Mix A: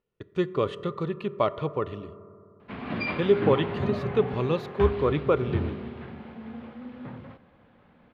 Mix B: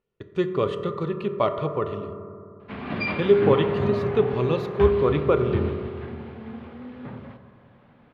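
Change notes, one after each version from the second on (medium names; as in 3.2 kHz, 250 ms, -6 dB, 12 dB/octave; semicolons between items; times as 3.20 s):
speech: send +9.5 dB; background: send on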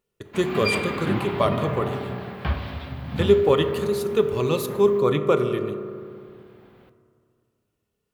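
background: entry -2.35 s; master: remove distance through air 250 m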